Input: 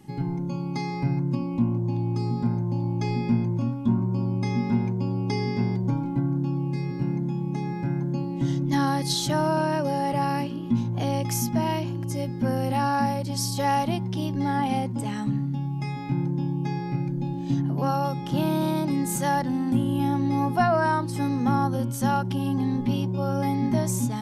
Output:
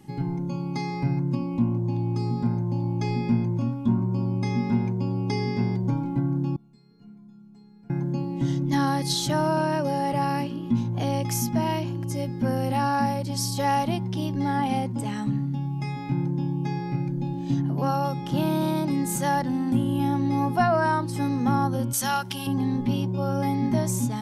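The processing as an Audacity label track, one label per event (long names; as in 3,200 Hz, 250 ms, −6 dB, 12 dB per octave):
6.560000	7.900000	stiff-string resonator 210 Hz, decay 0.68 s, inharmonicity 0.03
21.930000	22.470000	tilt shelving filter lows −10 dB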